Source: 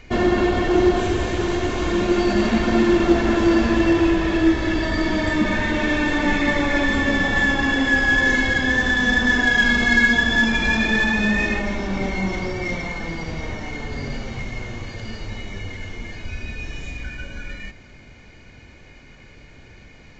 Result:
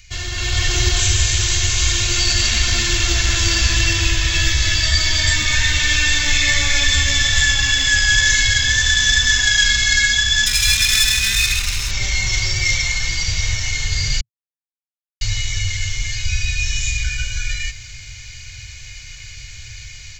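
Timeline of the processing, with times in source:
4.32–7.42 s: doubling 14 ms -5 dB
10.46–11.91 s: comb filter that takes the minimum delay 0.77 ms
14.21–15.21 s: mute
whole clip: FFT filter 120 Hz 0 dB, 190 Hz -27 dB, 840 Hz -18 dB, 2.4 kHz +1 dB, 6.6 kHz +15 dB; level rider gain up to 11.5 dB; trim -1 dB

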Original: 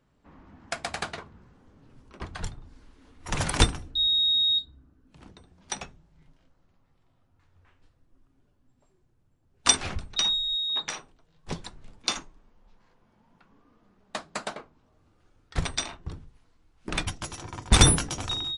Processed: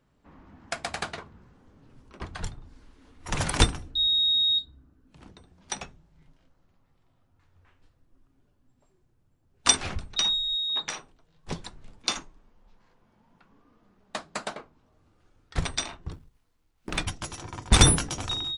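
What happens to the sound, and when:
16.13–16.97 s: companding laws mixed up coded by A

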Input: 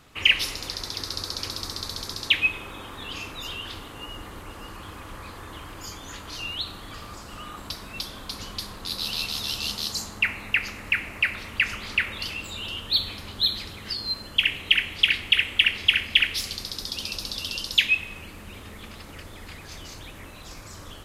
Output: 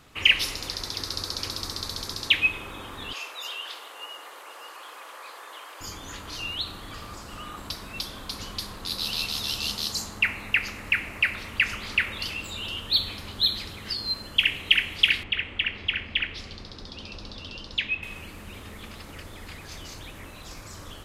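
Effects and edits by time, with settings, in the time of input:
3.13–5.81 s: high-pass 490 Hz 24 dB/octave
15.23–18.03 s: tape spacing loss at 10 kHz 27 dB

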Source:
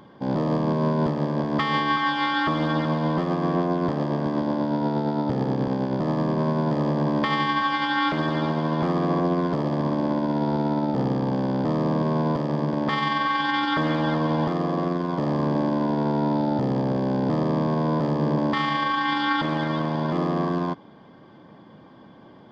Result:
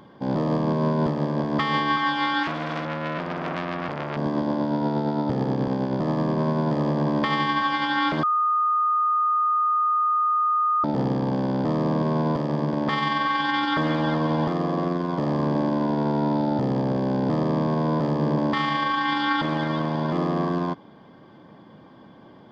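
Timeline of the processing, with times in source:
2.43–4.17 s: transformer saturation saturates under 1.7 kHz
8.23–10.84 s: bleep 1.23 kHz -18.5 dBFS

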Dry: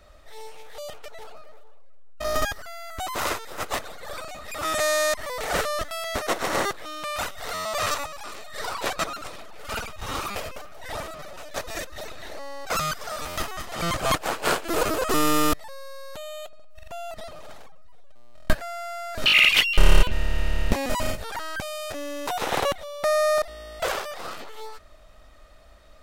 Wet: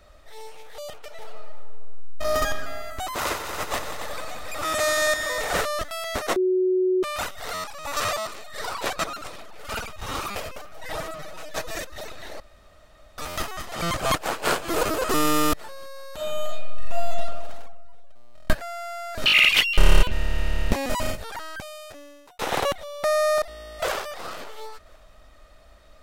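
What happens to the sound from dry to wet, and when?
1.03–2.52 s: reverb throw, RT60 2 s, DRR 5.5 dB
3.18–5.65 s: multi-head delay 92 ms, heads all three, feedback 56%, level -11.5 dB
6.36–7.03 s: bleep 370 Hz -18 dBFS
7.64–8.27 s: reverse
10.73–11.76 s: comb 6.3 ms, depth 61%
12.40–13.18 s: room tone
13.92–14.70 s: echo throw 570 ms, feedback 35%, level -15 dB
16.14–17.10 s: reverb throw, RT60 1.6 s, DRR -6 dB
21.04–22.39 s: fade out
23.26–24.14 s: echo throw 520 ms, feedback 15%, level -17.5 dB

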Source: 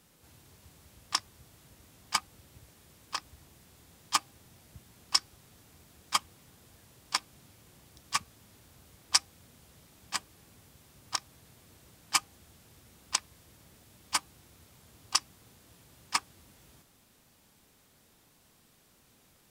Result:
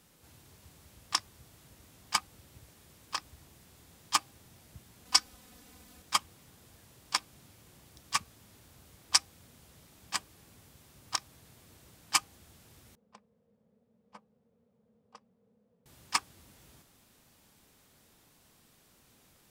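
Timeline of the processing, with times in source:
5.05–6.02 s: comb 4 ms, depth 99%
12.95–15.86 s: two resonant band-passes 320 Hz, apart 1.1 oct

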